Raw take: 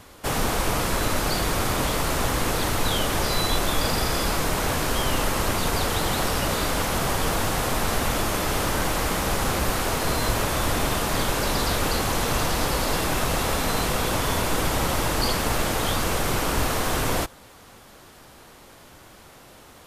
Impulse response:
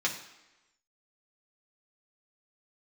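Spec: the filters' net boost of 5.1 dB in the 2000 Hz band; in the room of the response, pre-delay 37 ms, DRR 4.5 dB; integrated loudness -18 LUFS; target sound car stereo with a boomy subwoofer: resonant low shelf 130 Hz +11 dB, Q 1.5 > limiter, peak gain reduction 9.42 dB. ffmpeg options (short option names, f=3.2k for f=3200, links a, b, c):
-filter_complex "[0:a]equalizer=f=2k:t=o:g=6.5,asplit=2[a][b];[1:a]atrim=start_sample=2205,adelay=37[c];[b][c]afir=irnorm=-1:irlink=0,volume=-12.5dB[d];[a][d]amix=inputs=2:normalize=0,lowshelf=f=130:t=q:w=1.5:g=11,volume=4dB,alimiter=limit=-7dB:level=0:latency=1"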